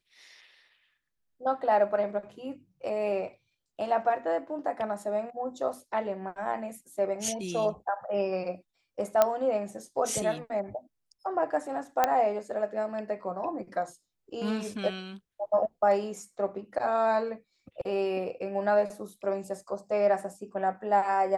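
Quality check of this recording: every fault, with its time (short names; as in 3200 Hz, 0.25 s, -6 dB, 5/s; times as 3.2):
9.22 pop -8 dBFS
12.04 pop -9 dBFS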